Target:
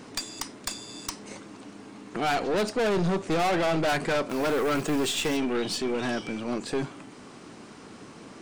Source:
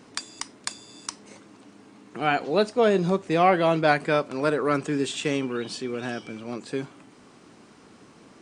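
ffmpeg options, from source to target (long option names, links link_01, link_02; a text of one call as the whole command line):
ffmpeg -i in.wav -filter_complex "[0:a]asettb=1/sr,asplit=3[link_01][link_02][link_03];[link_01]atrim=end=4.294[link_04];[link_02]atrim=start=4.29:end=5.37,asetpts=PTS-STARTPTS,afade=type=in:duration=0.004:curve=qsin,afade=type=out:start_time=1.076:duration=0.004:curve=qsin,acrusher=bits=3:mode=log:mix=0:aa=0.000001[link_05];[link_03]atrim=start=5.366[link_06];[link_04][link_05]acrossfade=duration=0.004:curve1=hsin:curve2=qsin[link_07];[link_07][link_06]acrossfade=duration=0.004:curve1=qsin:curve2=hsin,aeval=exprs='(tanh(28.2*val(0)+0.3)-tanh(0.3))/28.2':channel_layout=same,volume=6.5dB" out.wav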